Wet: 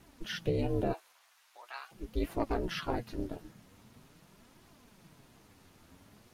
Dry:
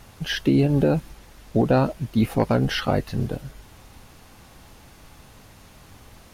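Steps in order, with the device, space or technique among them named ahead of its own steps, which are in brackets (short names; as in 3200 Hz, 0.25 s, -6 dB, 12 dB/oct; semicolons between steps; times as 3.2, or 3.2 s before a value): alien voice (ring modulator 170 Hz; flange 0.43 Hz, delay 2.5 ms, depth 9.9 ms, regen +40%); 0.92–1.91 HPF 600 Hz -> 1400 Hz 24 dB/oct; gain -5 dB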